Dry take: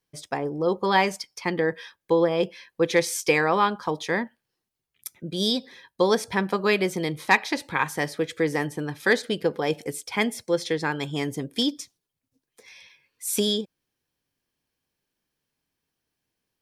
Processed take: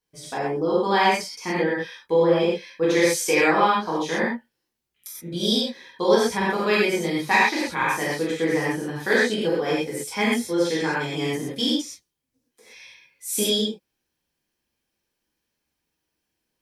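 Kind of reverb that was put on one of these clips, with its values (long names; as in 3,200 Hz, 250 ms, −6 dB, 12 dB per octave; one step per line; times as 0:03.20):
reverb whose tail is shaped and stops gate 150 ms flat, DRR −8 dB
level −6 dB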